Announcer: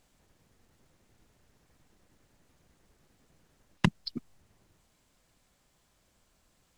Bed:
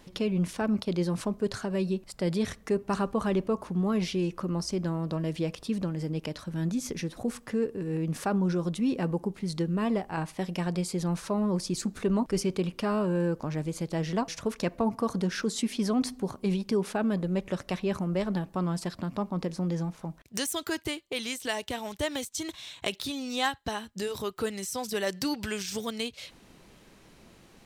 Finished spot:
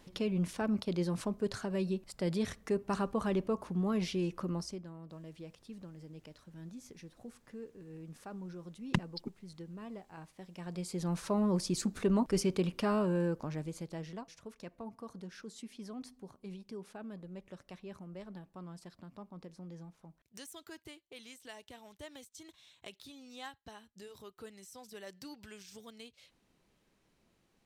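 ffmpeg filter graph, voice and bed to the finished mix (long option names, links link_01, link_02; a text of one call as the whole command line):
ffmpeg -i stem1.wav -i stem2.wav -filter_complex "[0:a]adelay=5100,volume=-5.5dB[link_01];[1:a]volume=10.5dB,afade=type=out:start_time=4.5:duration=0.34:silence=0.223872,afade=type=in:start_time=10.53:duration=0.82:silence=0.16788,afade=type=out:start_time=12.89:duration=1.37:silence=0.16788[link_02];[link_01][link_02]amix=inputs=2:normalize=0" out.wav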